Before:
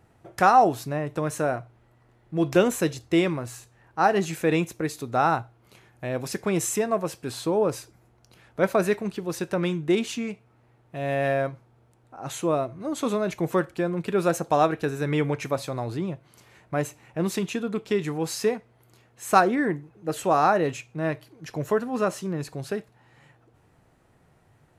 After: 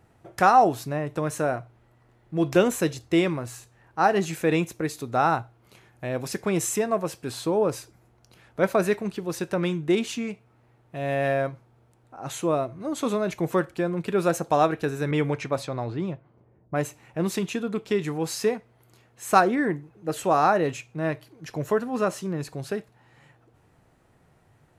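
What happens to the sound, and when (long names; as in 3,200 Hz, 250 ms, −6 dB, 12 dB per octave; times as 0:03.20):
0:15.11–0:16.76: low-pass that shuts in the quiet parts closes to 350 Hz, open at −22.5 dBFS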